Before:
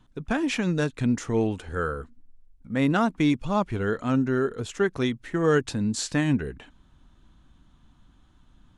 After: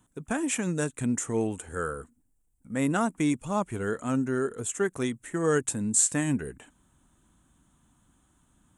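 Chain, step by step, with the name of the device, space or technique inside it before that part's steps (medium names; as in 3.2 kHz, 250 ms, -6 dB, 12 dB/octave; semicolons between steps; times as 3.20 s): budget condenser microphone (high-pass 110 Hz 6 dB/octave; resonant high shelf 6.2 kHz +11 dB, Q 3); trim -3 dB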